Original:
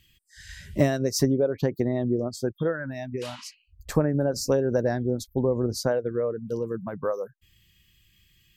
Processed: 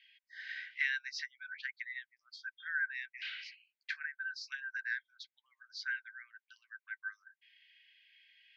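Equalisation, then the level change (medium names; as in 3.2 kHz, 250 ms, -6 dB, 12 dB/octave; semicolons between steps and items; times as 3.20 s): rippled Chebyshev high-pass 1.5 kHz, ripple 6 dB; inverse Chebyshev low-pass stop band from 10 kHz, stop band 60 dB; distance through air 97 m; +8.5 dB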